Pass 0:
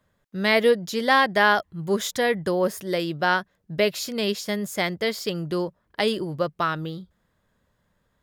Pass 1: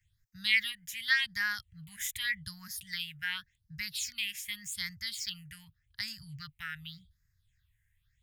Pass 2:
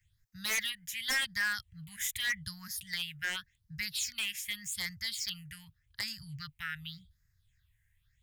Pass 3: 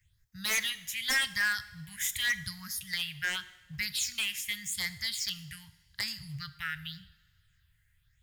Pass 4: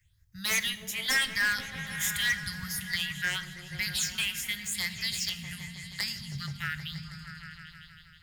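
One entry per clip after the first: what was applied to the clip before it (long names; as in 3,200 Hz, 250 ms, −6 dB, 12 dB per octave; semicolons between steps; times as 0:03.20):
elliptic band-stop filter 110–1,900 Hz, stop band 80 dB; all-pass phaser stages 6, 0.86 Hz, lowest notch 290–3,200 Hz
wave folding −26.5 dBFS; level +1.5 dB
in parallel at −9 dB: floating-point word with a short mantissa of 2 bits; on the sum: coupled-rooms reverb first 0.9 s, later 3.2 s, from −20 dB, DRR 13 dB
echo whose low-pass opens from repeat to repeat 159 ms, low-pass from 200 Hz, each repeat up 1 octave, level 0 dB; level +1.5 dB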